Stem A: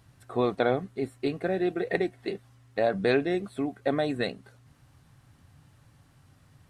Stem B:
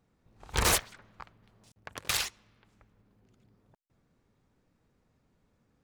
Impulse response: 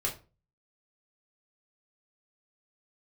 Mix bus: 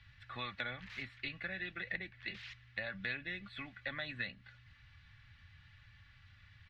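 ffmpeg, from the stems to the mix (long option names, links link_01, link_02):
-filter_complex "[0:a]aecho=1:1:3.5:0.64,volume=0.5dB[link_01];[1:a]alimiter=level_in=0.5dB:limit=-24dB:level=0:latency=1,volume=-0.5dB,volume=33.5dB,asoftclip=hard,volume=-33.5dB,adelay=250,volume=-12.5dB[link_02];[link_01][link_02]amix=inputs=2:normalize=0,firequalizer=gain_entry='entry(120,0);entry(290,-26);entry(1800,7);entry(3700,2);entry(8800,-30)':delay=0.05:min_phase=1,acrossover=split=130|630[link_03][link_04][link_05];[link_03]acompressor=threshold=-59dB:ratio=4[link_06];[link_04]acompressor=threshold=-48dB:ratio=4[link_07];[link_05]acompressor=threshold=-40dB:ratio=4[link_08];[link_06][link_07][link_08]amix=inputs=3:normalize=0"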